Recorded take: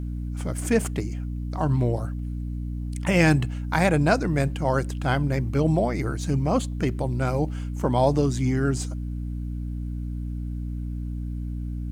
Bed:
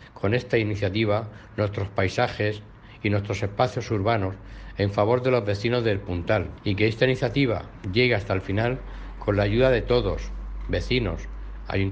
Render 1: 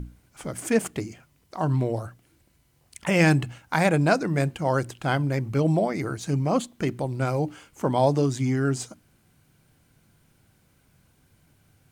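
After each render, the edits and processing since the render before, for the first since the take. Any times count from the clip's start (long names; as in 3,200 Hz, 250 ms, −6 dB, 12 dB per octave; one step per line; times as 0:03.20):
mains-hum notches 60/120/180/240/300 Hz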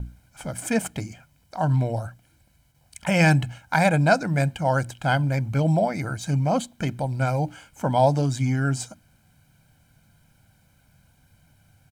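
noise gate with hold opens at −55 dBFS
comb filter 1.3 ms, depth 64%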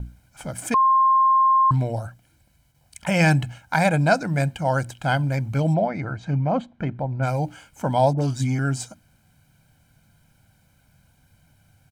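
0:00.74–0:01.71: beep over 1,060 Hz −13.5 dBFS
0:05.73–0:07.22: low-pass filter 3,000 Hz → 1,600 Hz
0:08.13–0:08.59: all-pass dispersion highs, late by 52 ms, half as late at 1,100 Hz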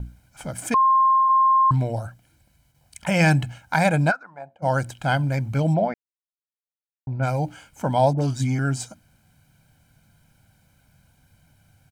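0:00.85–0:01.28: high-pass filter 220 Hz → 910 Hz
0:04.10–0:04.62: resonant band-pass 1,600 Hz → 530 Hz, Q 5.4
0:05.94–0:07.07: silence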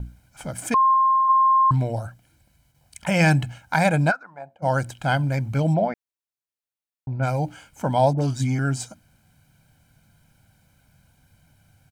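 0:00.90–0:01.32: double-tracking delay 39 ms −9.5 dB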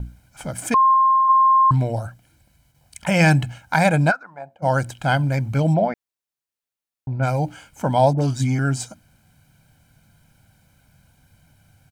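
level +2.5 dB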